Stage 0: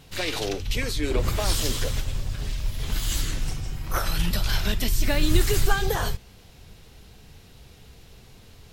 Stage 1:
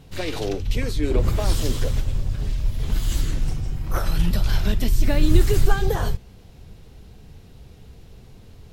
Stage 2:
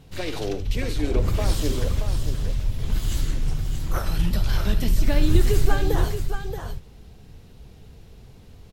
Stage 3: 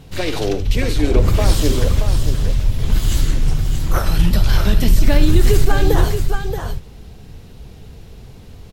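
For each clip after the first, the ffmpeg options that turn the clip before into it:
ffmpeg -i in.wav -af "tiltshelf=frequency=810:gain=5" out.wav
ffmpeg -i in.wav -af "aecho=1:1:73|628:0.2|0.422,volume=-2dB" out.wav
ffmpeg -i in.wav -af "alimiter=level_in=9dB:limit=-1dB:release=50:level=0:latency=1,volume=-1dB" out.wav

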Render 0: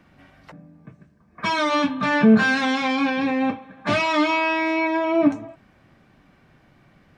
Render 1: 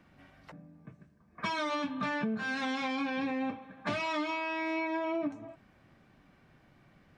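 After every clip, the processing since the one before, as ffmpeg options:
ffmpeg -i in.wav -af "acompressor=threshold=-23dB:ratio=16,volume=-6.5dB" out.wav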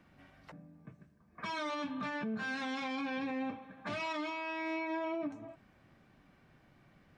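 ffmpeg -i in.wav -af "alimiter=level_in=4dB:limit=-24dB:level=0:latency=1,volume=-4dB,volume=-2dB" out.wav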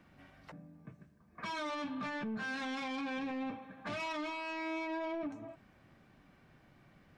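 ffmpeg -i in.wav -af "asoftclip=type=tanh:threshold=-34dB,volume=1dB" out.wav

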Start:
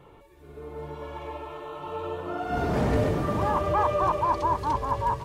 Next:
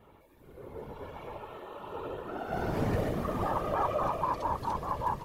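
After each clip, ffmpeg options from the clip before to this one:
ffmpeg -i in.wav -af "afftfilt=real='hypot(re,im)*cos(2*PI*random(0))':imag='hypot(re,im)*sin(2*PI*random(1))':win_size=512:overlap=0.75,aexciter=amount=3.1:drive=2.4:freq=11000" out.wav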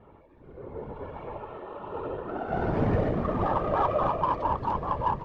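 ffmpeg -i in.wav -af "adynamicsmooth=sensitivity=1.5:basefreq=2100,volume=5dB" out.wav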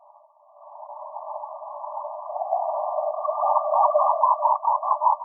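ffmpeg -i in.wav -af "afftfilt=real='re*between(b*sr/4096,580,1200)':imag='im*between(b*sr/4096,580,1200)':win_size=4096:overlap=0.75,volume=8dB" out.wav

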